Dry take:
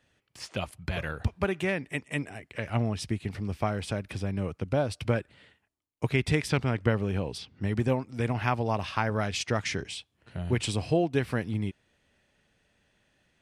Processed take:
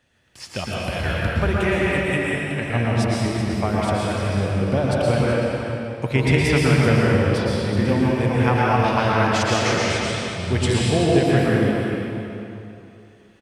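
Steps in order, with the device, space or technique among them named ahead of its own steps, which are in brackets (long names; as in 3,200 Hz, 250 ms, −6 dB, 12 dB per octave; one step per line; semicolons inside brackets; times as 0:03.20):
cave (single-tap delay 379 ms −11 dB; convolution reverb RT60 2.9 s, pre-delay 108 ms, DRR −5.5 dB)
level +3.5 dB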